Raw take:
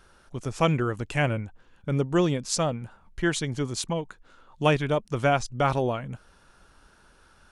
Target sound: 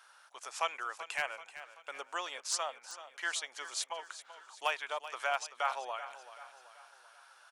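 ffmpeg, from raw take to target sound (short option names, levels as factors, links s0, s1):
-filter_complex "[0:a]highpass=f=770:w=0.5412,highpass=f=770:w=1.3066,asplit=2[s0][s1];[s1]acompressor=threshold=0.00891:ratio=6,volume=1.33[s2];[s0][s2]amix=inputs=2:normalize=0,aeval=exprs='0.237*(abs(mod(val(0)/0.237+3,4)-2)-1)':c=same,aecho=1:1:383|766|1149|1532|1915:0.211|0.101|0.0487|0.0234|0.0112,volume=0.422"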